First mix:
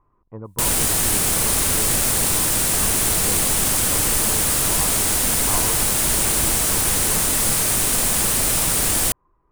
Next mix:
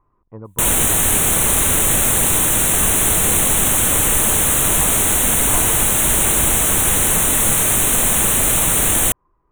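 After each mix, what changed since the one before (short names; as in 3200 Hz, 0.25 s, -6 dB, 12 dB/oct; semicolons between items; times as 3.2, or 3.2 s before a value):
background +4.0 dB; master: add Butterworth band-stop 4900 Hz, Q 2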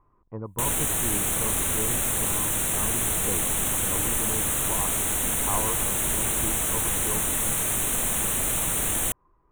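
background -10.0 dB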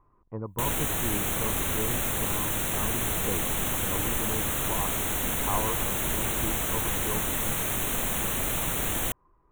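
master: add bell 9100 Hz -10 dB 0.7 oct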